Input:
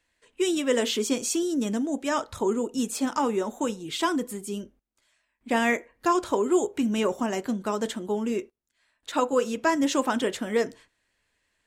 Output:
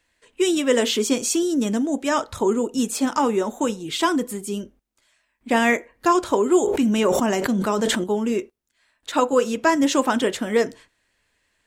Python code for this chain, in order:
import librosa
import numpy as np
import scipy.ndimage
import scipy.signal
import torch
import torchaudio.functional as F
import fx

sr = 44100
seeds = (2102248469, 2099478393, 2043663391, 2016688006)

y = fx.sustainer(x, sr, db_per_s=24.0, at=(6.62, 8.04))
y = y * 10.0 ** (5.0 / 20.0)